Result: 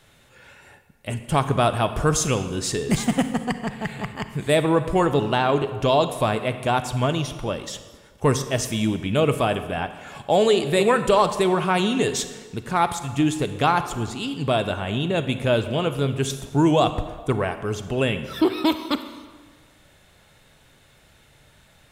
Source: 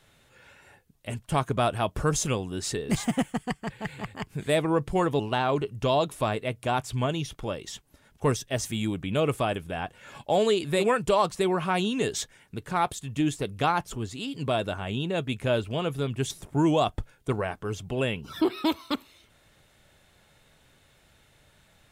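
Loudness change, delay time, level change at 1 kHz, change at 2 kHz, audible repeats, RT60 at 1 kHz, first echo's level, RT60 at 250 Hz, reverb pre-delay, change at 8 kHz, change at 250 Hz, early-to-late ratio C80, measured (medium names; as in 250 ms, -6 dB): +5.5 dB, no echo, +5.5 dB, +5.5 dB, no echo, 1.6 s, no echo, 1.5 s, 35 ms, +5.5 dB, +5.5 dB, 12.0 dB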